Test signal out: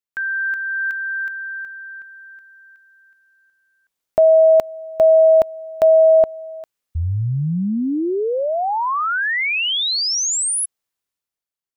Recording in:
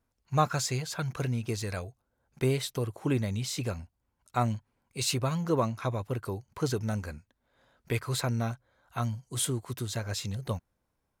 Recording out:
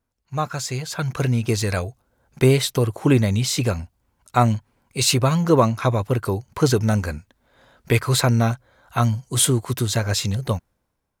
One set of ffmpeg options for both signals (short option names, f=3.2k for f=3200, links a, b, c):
-af "dynaudnorm=f=160:g=11:m=12.5dB"